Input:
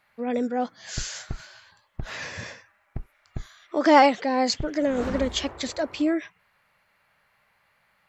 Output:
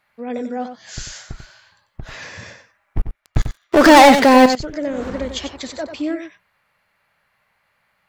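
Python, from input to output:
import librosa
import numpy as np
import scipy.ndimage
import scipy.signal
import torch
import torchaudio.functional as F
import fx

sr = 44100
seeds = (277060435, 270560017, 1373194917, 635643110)

y = fx.leveller(x, sr, passes=5, at=(2.97, 4.46))
y = y + 10.0 ** (-9.0 / 20.0) * np.pad(y, (int(93 * sr / 1000.0), 0))[:len(y)]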